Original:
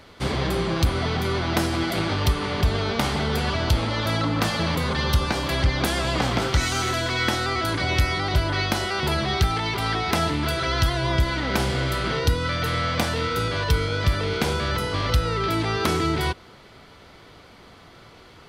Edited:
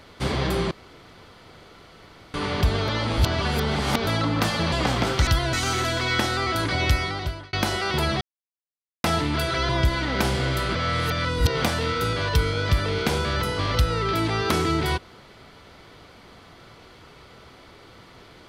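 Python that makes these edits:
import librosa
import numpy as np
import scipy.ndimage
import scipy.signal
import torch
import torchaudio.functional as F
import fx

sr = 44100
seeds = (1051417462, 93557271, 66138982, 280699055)

y = fx.edit(x, sr, fx.room_tone_fill(start_s=0.71, length_s=1.63),
    fx.reverse_span(start_s=2.88, length_s=1.19),
    fx.cut(start_s=4.72, length_s=1.35),
    fx.fade_out_span(start_s=8.01, length_s=0.61),
    fx.silence(start_s=9.3, length_s=0.83),
    fx.move(start_s=10.78, length_s=0.26, to_s=6.62),
    fx.reverse_span(start_s=12.1, length_s=0.89), tone=tone)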